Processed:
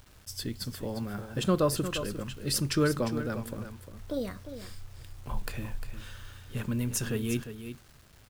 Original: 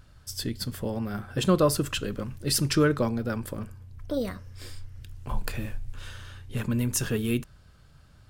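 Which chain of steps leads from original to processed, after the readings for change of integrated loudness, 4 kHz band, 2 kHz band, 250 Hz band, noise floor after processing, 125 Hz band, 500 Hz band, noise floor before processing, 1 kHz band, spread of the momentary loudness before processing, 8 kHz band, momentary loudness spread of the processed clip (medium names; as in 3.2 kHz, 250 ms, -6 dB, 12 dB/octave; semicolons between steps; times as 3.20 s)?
-4.0 dB, -3.5 dB, -3.5 dB, -3.5 dB, -56 dBFS, -3.5 dB, -3.5 dB, -55 dBFS, -3.5 dB, 20 LU, -3.5 dB, 19 LU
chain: bit crusher 9-bit; delay 352 ms -10.5 dB; crackle 480 per s -45 dBFS; trim -4 dB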